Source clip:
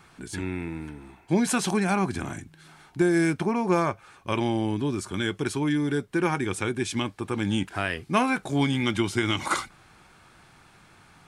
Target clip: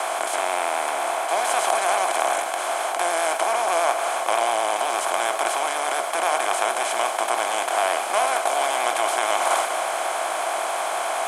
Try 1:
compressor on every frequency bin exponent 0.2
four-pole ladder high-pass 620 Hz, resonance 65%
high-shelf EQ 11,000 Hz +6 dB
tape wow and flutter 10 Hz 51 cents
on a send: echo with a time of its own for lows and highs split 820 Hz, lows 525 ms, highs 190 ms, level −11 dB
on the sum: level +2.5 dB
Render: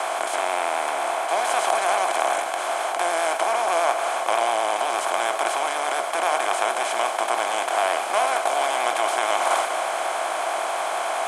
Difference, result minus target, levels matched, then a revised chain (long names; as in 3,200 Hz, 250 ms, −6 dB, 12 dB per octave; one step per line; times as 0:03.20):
8,000 Hz band −3.0 dB
compressor on every frequency bin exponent 0.2
four-pole ladder high-pass 620 Hz, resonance 65%
high-shelf EQ 11,000 Hz +15.5 dB
tape wow and flutter 10 Hz 51 cents
on a send: echo with a time of its own for lows and highs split 820 Hz, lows 525 ms, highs 190 ms, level −11 dB
on the sum: level +2.5 dB